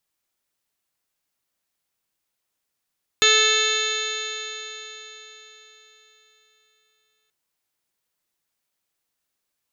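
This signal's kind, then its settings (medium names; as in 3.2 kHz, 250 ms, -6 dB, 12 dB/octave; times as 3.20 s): stretched partials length 4.08 s, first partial 431 Hz, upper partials -17/-1.5/1/-3/1.5/-2/6/1/-11/-13/-18/-12/2 dB, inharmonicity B 0.0012, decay 4.18 s, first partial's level -23 dB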